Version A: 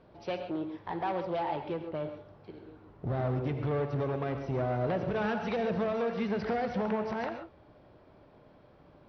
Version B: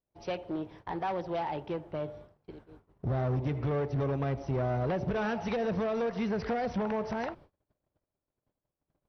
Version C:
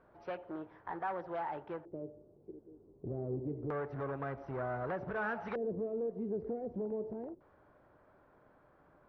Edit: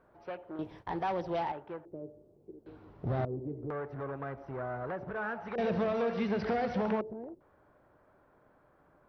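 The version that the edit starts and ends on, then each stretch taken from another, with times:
C
0.59–1.52 s: from B
2.66–3.25 s: from A
5.58–7.01 s: from A

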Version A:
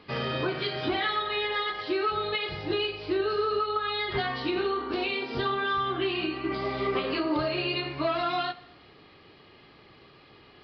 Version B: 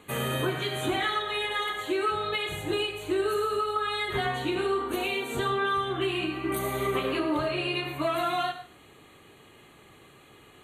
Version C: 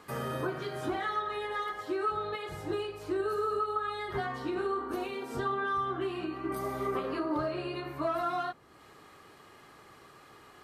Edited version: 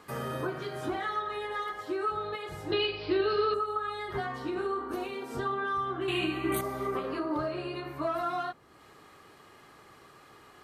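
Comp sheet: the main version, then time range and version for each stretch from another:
C
2.72–3.54 s: from A
6.08–6.61 s: from B

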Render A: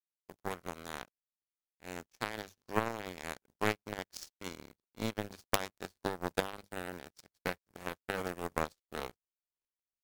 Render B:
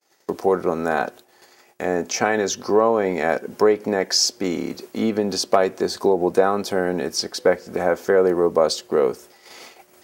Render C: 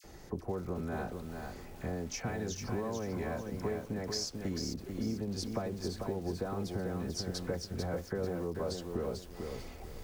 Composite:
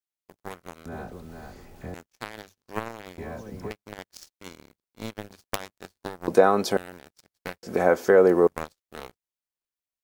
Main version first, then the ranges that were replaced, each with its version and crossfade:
A
0.86–1.94 s: from C
3.18–3.71 s: from C
6.28–6.77 s: from B
7.63–8.47 s: from B

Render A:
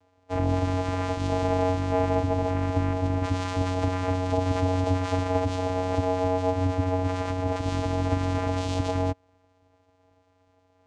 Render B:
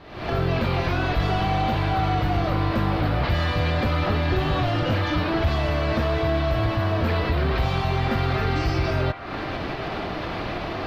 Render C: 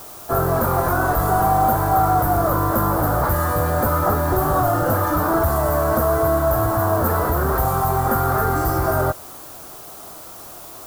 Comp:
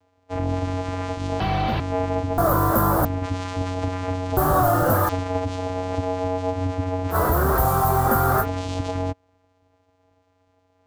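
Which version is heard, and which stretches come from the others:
A
1.40–1.80 s: from B
2.38–3.05 s: from C
4.37–5.09 s: from C
7.13–8.43 s: from C, crossfade 0.06 s

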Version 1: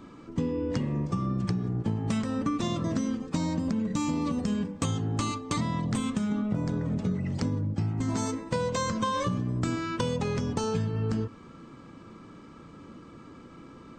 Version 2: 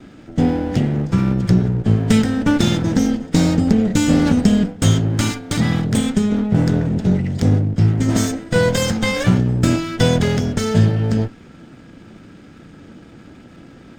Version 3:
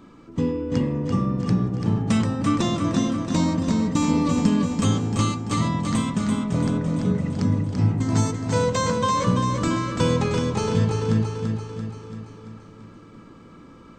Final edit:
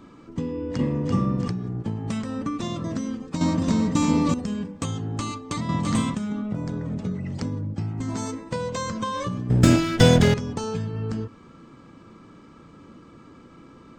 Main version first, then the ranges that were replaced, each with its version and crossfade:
1
0.79–1.48 s: from 3
3.41–4.34 s: from 3
5.69–6.15 s: from 3
9.50–10.34 s: from 2

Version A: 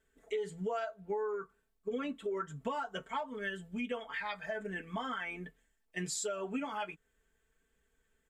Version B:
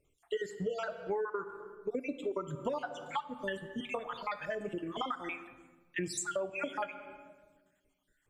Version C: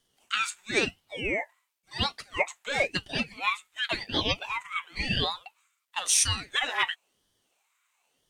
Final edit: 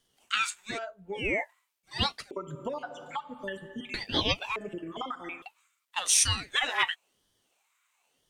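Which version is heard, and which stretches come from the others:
C
0.74–1.17 s: from A, crossfade 0.10 s
2.31–3.94 s: from B
4.56–5.42 s: from B

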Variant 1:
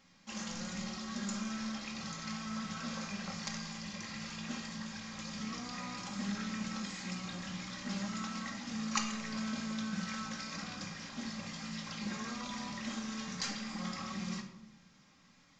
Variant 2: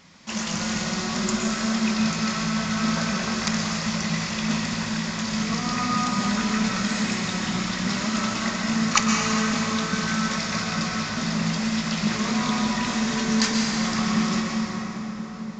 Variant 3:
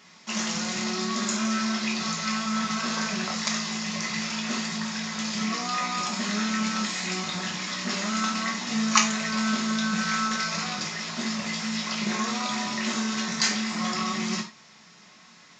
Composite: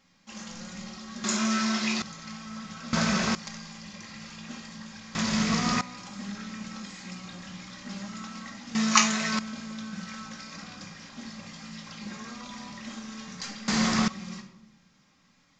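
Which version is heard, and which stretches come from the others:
1
1.24–2.02 s: from 3
2.93–3.35 s: from 2
5.15–5.81 s: from 2
8.75–9.39 s: from 3
13.68–14.08 s: from 2

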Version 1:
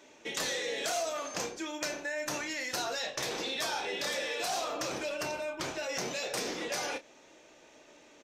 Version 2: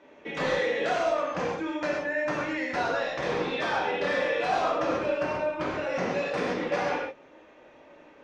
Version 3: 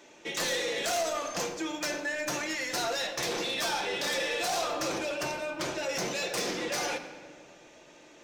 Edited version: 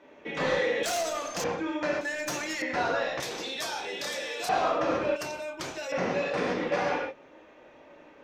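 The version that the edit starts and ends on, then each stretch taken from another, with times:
2
0.83–1.44 s: from 3
2.01–2.62 s: from 3
3.20–4.49 s: from 1
5.16–5.92 s: from 1

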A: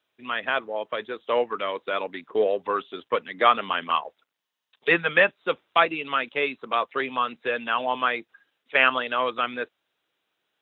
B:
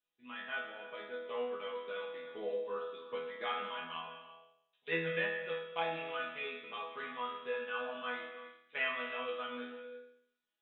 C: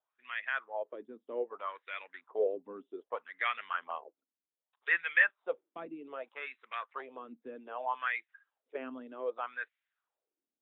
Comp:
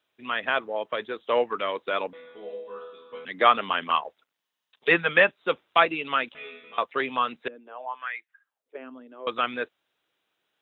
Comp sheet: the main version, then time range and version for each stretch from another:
A
2.13–3.25 s: from B
6.35–6.78 s: from B
7.48–9.27 s: from C

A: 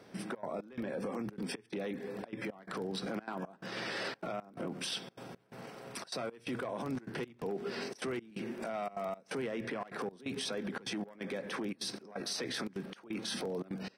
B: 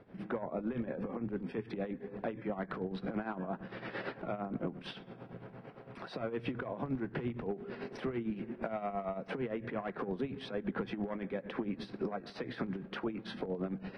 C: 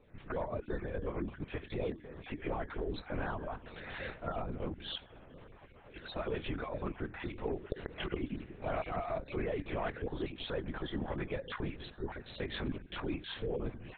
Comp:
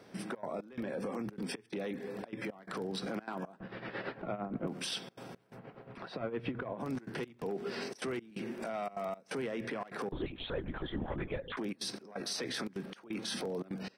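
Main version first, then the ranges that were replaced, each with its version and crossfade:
A
3.60–4.67 s: from B
5.55–6.83 s: from B, crossfade 0.10 s
10.12–11.57 s: from C

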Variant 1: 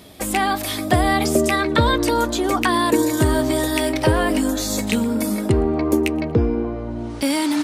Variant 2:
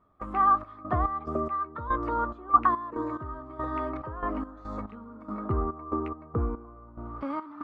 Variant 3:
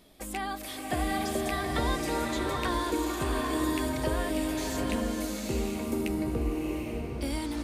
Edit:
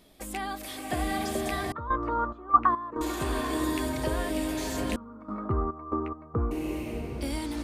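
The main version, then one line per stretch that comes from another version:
3
1.72–3.01 s: from 2
4.96–6.51 s: from 2
not used: 1

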